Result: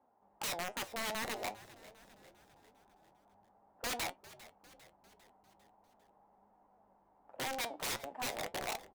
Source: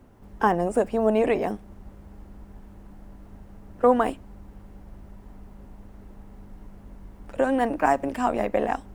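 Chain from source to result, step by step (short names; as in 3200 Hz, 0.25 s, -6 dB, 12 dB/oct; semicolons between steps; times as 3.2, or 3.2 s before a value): band-pass 810 Hz, Q 3.7; wrapped overs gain 26.5 dB; flange 0.45 Hz, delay 3.6 ms, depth 6.8 ms, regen +73%; vibrato 9.8 Hz 43 cents; frequency-shifting echo 0.4 s, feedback 55%, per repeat -100 Hz, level -18 dB; gain -1 dB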